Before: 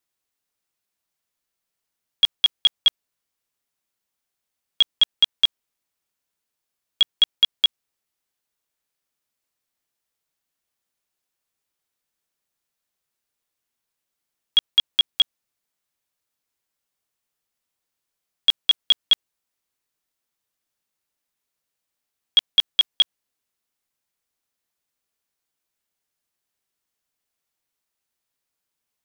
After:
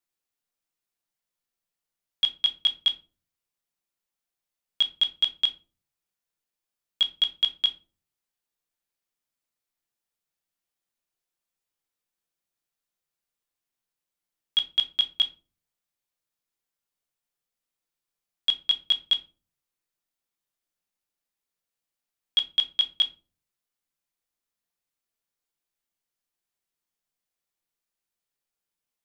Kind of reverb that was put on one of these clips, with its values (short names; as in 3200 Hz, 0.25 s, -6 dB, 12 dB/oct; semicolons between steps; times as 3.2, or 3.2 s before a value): shoebox room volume 160 m³, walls furnished, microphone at 0.82 m; gain -7 dB